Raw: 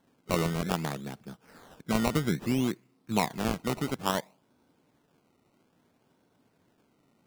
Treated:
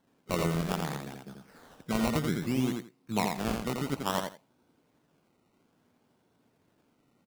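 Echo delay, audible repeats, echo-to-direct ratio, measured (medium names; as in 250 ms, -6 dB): 85 ms, 2, -4.0 dB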